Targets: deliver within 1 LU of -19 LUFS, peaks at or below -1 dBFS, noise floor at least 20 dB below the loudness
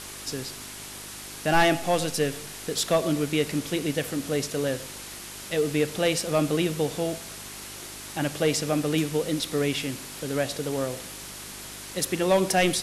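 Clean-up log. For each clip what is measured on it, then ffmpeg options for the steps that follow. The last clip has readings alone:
hum 50 Hz; harmonics up to 400 Hz; hum level -49 dBFS; noise floor -40 dBFS; noise floor target -47 dBFS; loudness -26.5 LUFS; peak -12.5 dBFS; loudness target -19.0 LUFS
-> -af "bandreject=f=50:t=h:w=4,bandreject=f=100:t=h:w=4,bandreject=f=150:t=h:w=4,bandreject=f=200:t=h:w=4,bandreject=f=250:t=h:w=4,bandreject=f=300:t=h:w=4,bandreject=f=350:t=h:w=4,bandreject=f=400:t=h:w=4"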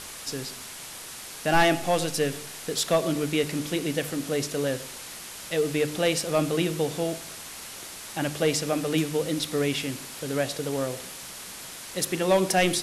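hum none; noise floor -41 dBFS; noise floor target -47 dBFS
-> -af "afftdn=nr=6:nf=-41"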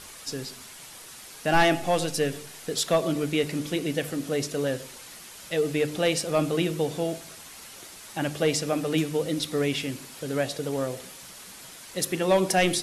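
noise floor -45 dBFS; noise floor target -47 dBFS
-> -af "afftdn=nr=6:nf=-45"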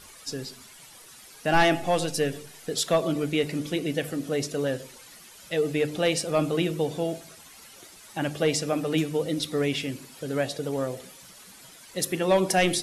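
noise floor -49 dBFS; loudness -27.0 LUFS; peak -12.5 dBFS; loudness target -19.0 LUFS
-> -af "volume=8dB"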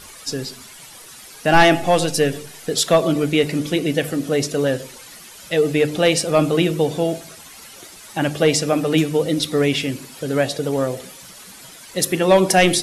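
loudness -19.0 LUFS; peak -4.5 dBFS; noise floor -41 dBFS

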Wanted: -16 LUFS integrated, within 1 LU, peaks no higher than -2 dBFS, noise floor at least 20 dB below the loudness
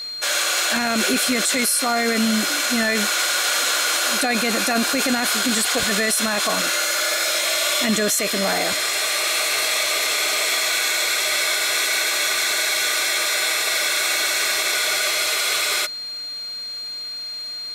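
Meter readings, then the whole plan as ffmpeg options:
steady tone 4200 Hz; tone level -28 dBFS; loudness -19.0 LUFS; peak -7.5 dBFS; loudness target -16.0 LUFS
-> -af "bandreject=f=4.2k:w=30"
-af "volume=3dB"

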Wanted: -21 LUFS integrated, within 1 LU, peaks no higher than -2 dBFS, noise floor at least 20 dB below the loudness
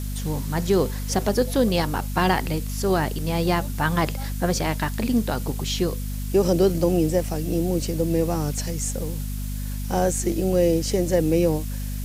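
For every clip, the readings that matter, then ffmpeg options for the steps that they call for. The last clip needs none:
hum 50 Hz; harmonics up to 250 Hz; hum level -26 dBFS; noise floor -29 dBFS; noise floor target -44 dBFS; loudness -23.5 LUFS; peak -7.5 dBFS; loudness target -21.0 LUFS
-> -af "bandreject=f=50:t=h:w=4,bandreject=f=100:t=h:w=4,bandreject=f=150:t=h:w=4,bandreject=f=200:t=h:w=4,bandreject=f=250:t=h:w=4"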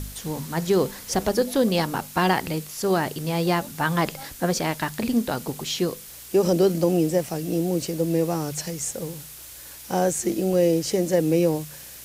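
hum none; noise floor -42 dBFS; noise floor target -44 dBFS
-> -af "afftdn=nr=6:nf=-42"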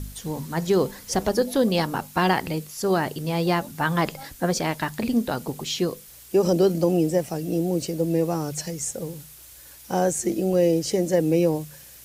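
noise floor -46 dBFS; loudness -24.0 LUFS; peak -8.0 dBFS; loudness target -21.0 LUFS
-> -af "volume=3dB"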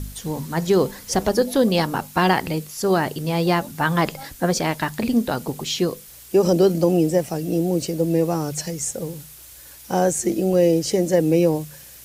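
loudness -21.0 LUFS; peak -5.0 dBFS; noise floor -43 dBFS

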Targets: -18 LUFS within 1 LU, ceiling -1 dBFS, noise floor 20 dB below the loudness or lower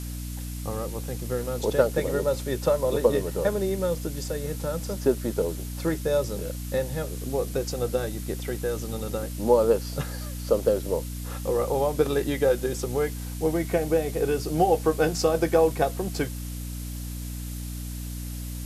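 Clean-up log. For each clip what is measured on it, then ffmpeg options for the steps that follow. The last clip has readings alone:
hum 60 Hz; harmonics up to 300 Hz; hum level -32 dBFS; noise floor -34 dBFS; noise floor target -47 dBFS; loudness -27.0 LUFS; peak -6.5 dBFS; loudness target -18.0 LUFS
-> -af "bandreject=f=60:t=h:w=4,bandreject=f=120:t=h:w=4,bandreject=f=180:t=h:w=4,bandreject=f=240:t=h:w=4,bandreject=f=300:t=h:w=4"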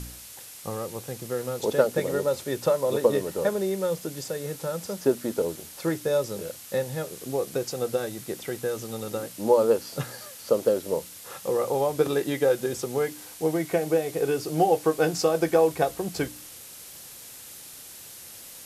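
hum none; noise floor -44 dBFS; noise floor target -47 dBFS
-> -af "afftdn=nr=6:nf=-44"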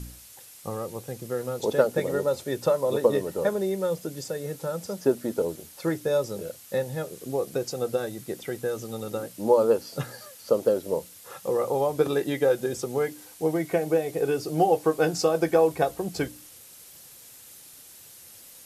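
noise floor -49 dBFS; loudness -27.0 LUFS; peak -6.5 dBFS; loudness target -18.0 LUFS
-> -af "volume=9dB,alimiter=limit=-1dB:level=0:latency=1"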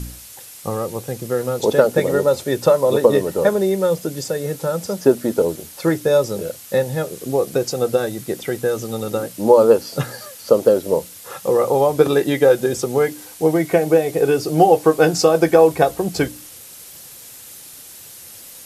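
loudness -18.0 LUFS; peak -1.0 dBFS; noise floor -40 dBFS

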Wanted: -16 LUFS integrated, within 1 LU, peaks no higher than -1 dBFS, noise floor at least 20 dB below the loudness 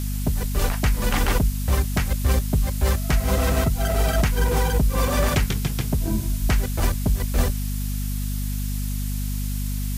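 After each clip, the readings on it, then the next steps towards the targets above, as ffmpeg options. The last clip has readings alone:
hum 50 Hz; harmonics up to 250 Hz; hum level -24 dBFS; noise floor -26 dBFS; noise floor target -44 dBFS; loudness -23.5 LUFS; peak -9.5 dBFS; loudness target -16.0 LUFS
-> -af "bandreject=f=50:t=h:w=4,bandreject=f=100:t=h:w=4,bandreject=f=150:t=h:w=4,bandreject=f=200:t=h:w=4,bandreject=f=250:t=h:w=4"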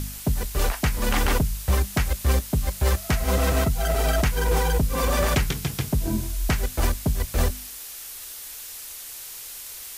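hum none; noise floor -38 dBFS; noise floor target -46 dBFS
-> -af "afftdn=nr=8:nf=-38"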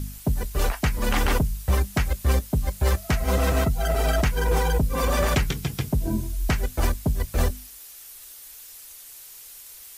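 noise floor -44 dBFS; noise floor target -45 dBFS
-> -af "afftdn=nr=6:nf=-44"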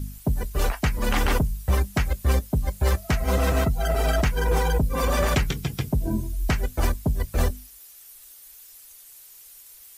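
noise floor -48 dBFS; loudness -25.0 LUFS; peak -11.5 dBFS; loudness target -16.0 LUFS
-> -af "volume=9dB"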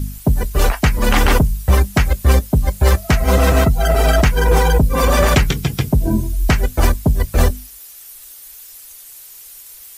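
loudness -16.0 LUFS; peak -2.5 dBFS; noise floor -39 dBFS

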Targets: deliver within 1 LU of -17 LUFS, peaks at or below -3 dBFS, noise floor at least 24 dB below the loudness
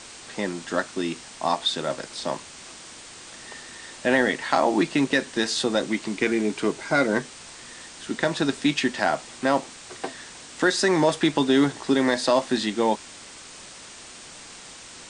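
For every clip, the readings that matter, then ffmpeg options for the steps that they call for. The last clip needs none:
noise floor -44 dBFS; noise floor target -48 dBFS; loudness -24.0 LUFS; peak -6.5 dBFS; loudness target -17.0 LUFS
-> -af "afftdn=nr=6:nf=-44"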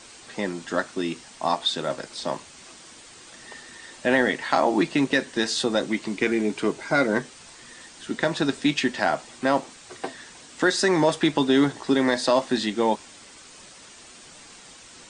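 noise floor -47 dBFS; noise floor target -48 dBFS
-> -af "afftdn=nr=6:nf=-47"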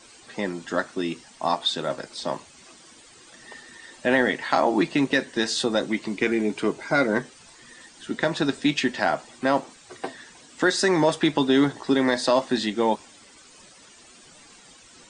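noise floor -51 dBFS; loudness -24.0 LUFS; peak -7.0 dBFS; loudness target -17.0 LUFS
-> -af "volume=7dB,alimiter=limit=-3dB:level=0:latency=1"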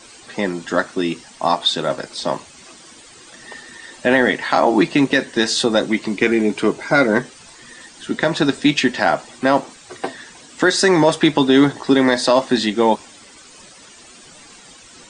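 loudness -17.5 LUFS; peak -3.0 dBFS; noise floor -44 dBFS

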